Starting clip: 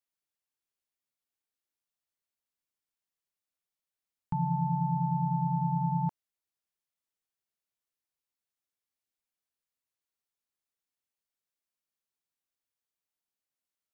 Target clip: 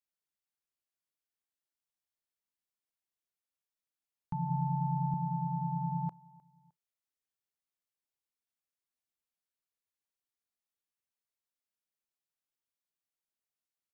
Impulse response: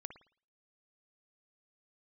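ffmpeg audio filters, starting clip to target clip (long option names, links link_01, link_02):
-filter_complex "[0:a]asettb=1/sr,asplit=3[link_01][link_02][link_03];[link_01]atrim=end=4.494[link_04];[link_02]atrim=start=4.49:end=5.14,asetpts=PTS-STARTPTS,afade=type=in:duration=0.004:curve=qsin,afade=type=out:start_time=0.646:duration=0.004:curve=qsin,equalizer=frequency=125:width_type=o:width=1:gain=8,equalizer=frequency=250:width_type=o:width=1:gain=-9,equalizer=frequency=500:width_type=o:width=1:gain=-5,equalizer=frequency=1000:width_type=o:width=1:gain=4[link_05];[link_03]atrim=start=5.136[link_06];[link_04][link_05]acrossfade=duration=0.004:curve1=hsin:curve2=qsin[link_07];[link_07][link_06]acrossfade=duration=0.004:curve1=qsin:curve2=hsin,aecho=1:1:307|614:0.0708|0.0248,asplit=2[link_08][link_09];[1:a]atrim=start_sample=2205,afade=type=out:start_time=0.18:duration=0.01,atrim=end_sample=8379,asetrate=79380,aresample=44100[link_10];[link_09][link_10]afir=irnorm=-1:irlink=0,volume=-6.5dB[link_11];[link_08][link_11]amix=inputs=2:normalize=0,volume=-6dB"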